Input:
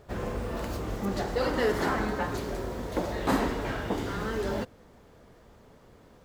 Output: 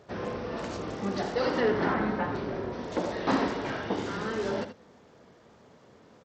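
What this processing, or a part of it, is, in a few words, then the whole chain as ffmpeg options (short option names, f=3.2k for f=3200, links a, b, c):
Bluetooth headset: -filter_complex "[0:a]asettb=1/sr,asplit=3[a][b][c];[a]atrim=end=1.604[d];[b]atrim=start=1.6:end=2.73,asetpts=PTS-STARTPTS,afade=t=in:d=0.004:c=qsin,afade=t=out:st=1.126:d=0.004:c=qsin,bass=f=250:g=4,treble=f=4k:g=-13[e];[c]atrim=start=2.726[f];[d][e]acrossfade=d=0.004:c1=hsin:c2=qsin[g];[g][f]acrossfade=d=0.004:c1=qsin:c2=hsin,highpass=130,aecho=1:1:79:0.299,aresample=16000,aresample=44100" -ar 32000 -c:a sbc -b:a 64k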